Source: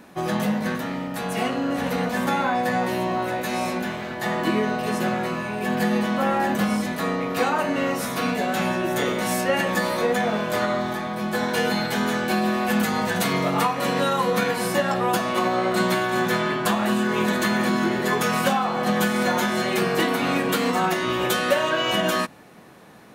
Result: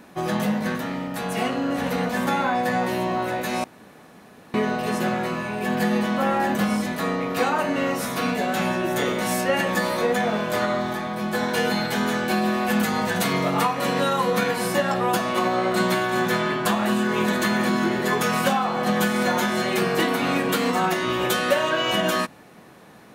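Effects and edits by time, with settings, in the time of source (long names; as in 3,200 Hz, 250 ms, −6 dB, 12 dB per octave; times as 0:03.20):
0:03.64–0:04.54: fill with room tone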